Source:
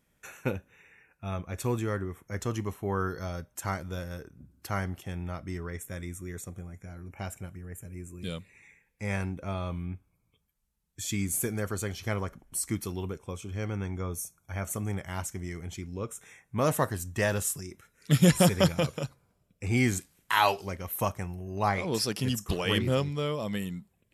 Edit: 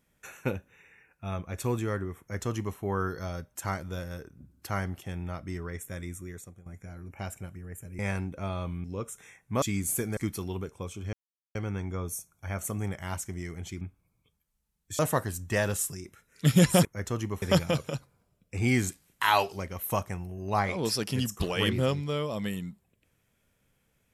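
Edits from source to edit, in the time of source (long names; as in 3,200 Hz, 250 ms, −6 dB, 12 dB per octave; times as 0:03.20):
0:02.20–0:02.77: duplicate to 0:18.51
0:06.15–0:06.66: fade out, to −15 dB
0:07.99–0:09.04: remove
0:09.89–0:11.07: swap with 0:15.87–0:16.65
0:11.62–0:12.65: remove
0:13.61: splice in silence 0.42 s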